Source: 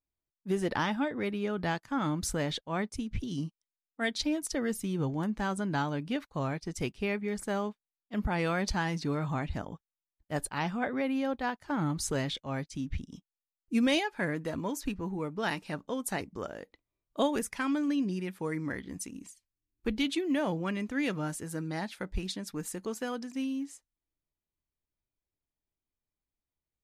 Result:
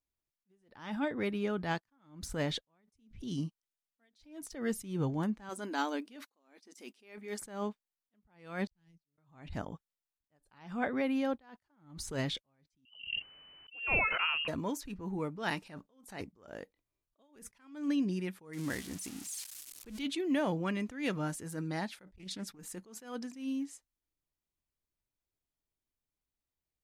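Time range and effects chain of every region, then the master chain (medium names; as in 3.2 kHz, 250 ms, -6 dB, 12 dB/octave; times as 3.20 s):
5.49–7.42 s: brick-wall FIR high-pass 210 Hz + treble shelf 4.2 kHz +8.5 dB
8.67–9.18 s: gate -31 dBFS, range -30 dB + amplifier tone stack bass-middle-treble 10-0-1 + three bands expanded up and down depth 70%
12.85–14.48 s: frequency inversion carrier 3 kHz + decay stretcher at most 27 dB/s
18.53–19.99 s: zero-crossing glitches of -29.5 dBFS + low-pass 11 kHz
22.16–22.59 s: compressor with a negative ratio -37 dBFS, ratio -0.5 + loudspeaker Doppler distortion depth 0.19 ms
whole clip: de-esser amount 75%; attacks held to a fixed rise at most 120 dB/s; trim -1 dB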